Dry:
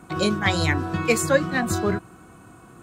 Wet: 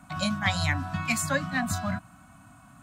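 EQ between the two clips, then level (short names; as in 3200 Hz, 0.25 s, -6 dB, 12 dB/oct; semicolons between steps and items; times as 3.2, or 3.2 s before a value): elliptic band-stop 280–590 Hz, stop band 40 dB; -3.5 dB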